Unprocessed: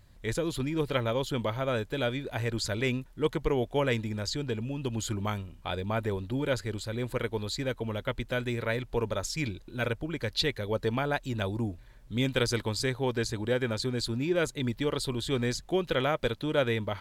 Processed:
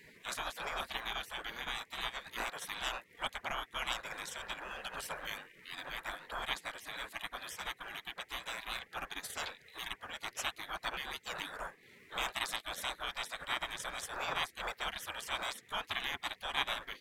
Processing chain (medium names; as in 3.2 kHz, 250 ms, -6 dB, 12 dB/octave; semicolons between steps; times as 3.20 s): band noise 580–1500 Hz -41 dBFS; transient shaper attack -2 dB, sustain -8 dB; spectral gate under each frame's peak -20 dB weak; trim +4 dB